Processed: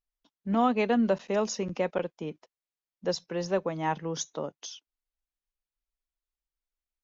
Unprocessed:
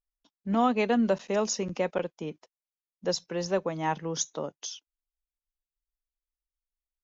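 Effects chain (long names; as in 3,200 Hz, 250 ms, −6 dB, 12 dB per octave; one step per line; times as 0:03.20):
high-frequency loss of the air 69 metres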